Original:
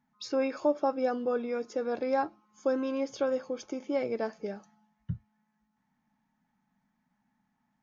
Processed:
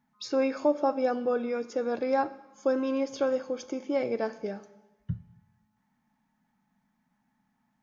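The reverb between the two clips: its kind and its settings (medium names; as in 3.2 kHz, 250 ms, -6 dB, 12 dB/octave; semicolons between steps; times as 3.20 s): Schroeder reverb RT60 1 s, combs from 30 ms, DRR 15 dB; trim +2 dB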